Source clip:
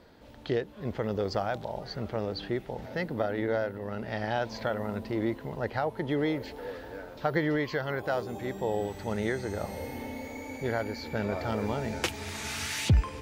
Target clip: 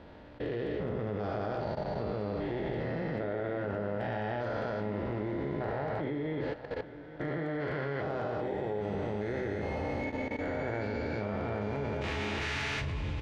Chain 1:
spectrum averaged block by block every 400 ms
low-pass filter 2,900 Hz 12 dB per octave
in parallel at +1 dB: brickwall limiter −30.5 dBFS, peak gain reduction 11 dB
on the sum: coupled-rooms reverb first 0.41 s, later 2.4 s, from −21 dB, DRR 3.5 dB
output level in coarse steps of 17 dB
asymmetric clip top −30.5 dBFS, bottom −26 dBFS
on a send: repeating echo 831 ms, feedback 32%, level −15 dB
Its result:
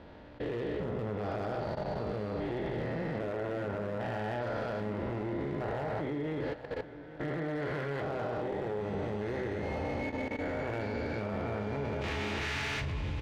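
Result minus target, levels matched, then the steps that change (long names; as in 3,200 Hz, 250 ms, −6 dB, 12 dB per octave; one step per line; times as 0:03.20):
asymmetric clip: distortion +9 dB
change: asymmetric clip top −22 dBFS, bottom −26 dBFS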